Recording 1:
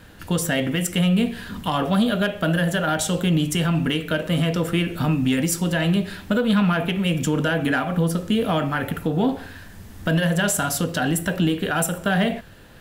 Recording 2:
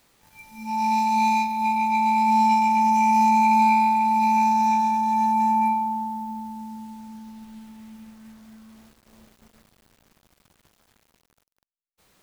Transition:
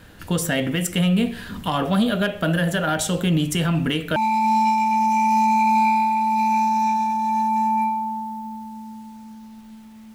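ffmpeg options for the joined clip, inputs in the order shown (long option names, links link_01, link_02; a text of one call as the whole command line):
ffmpeg -i cue0.wav -i cue1.wav -filter_complex "[0:a]apad=whole_dur=10.14,atrim=end=10.14,atrim=end=4.162[link_01];[1:a]atrim=start=1.998:end=7.98[link_02];[link_01][link_02]acrossfade=duration=0.004:curve1=hsin:curve2=hsin" out.wav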